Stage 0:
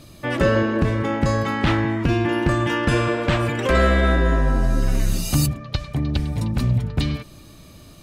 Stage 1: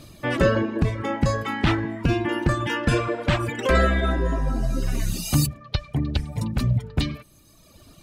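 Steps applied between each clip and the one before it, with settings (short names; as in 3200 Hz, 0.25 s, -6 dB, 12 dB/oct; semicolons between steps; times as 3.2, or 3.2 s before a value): reverb removal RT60 1.5 s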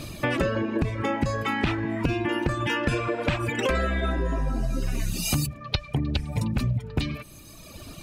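bell 2500 Hz +6.5 dB 0.2 oct; compressor 6:1, threshold -31 dBFS, peak gain reduction 16 dB; gain +8 dB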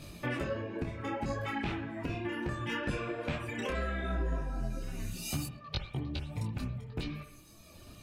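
on a send at -6.5 dB: reverb, pre-delay 47 ms; on the sum: detuned doubles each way 24 cents; gain -7 dB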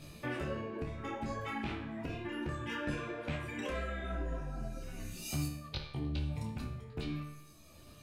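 resonator 74 Hz, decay 0.68 s, harmonics all, mix 80%; gain +6 dB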